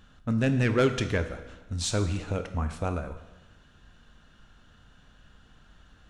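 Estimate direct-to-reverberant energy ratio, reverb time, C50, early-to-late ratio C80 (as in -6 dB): 8.0 dB, 1.1 s, 10.5 dB, 12.0 dB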